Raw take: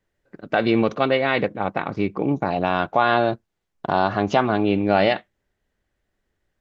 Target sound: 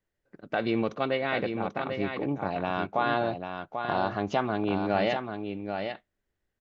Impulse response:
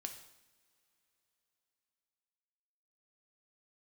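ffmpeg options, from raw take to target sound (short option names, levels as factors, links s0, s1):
-af "aecho=1:1:790:0.473,volume=0.376"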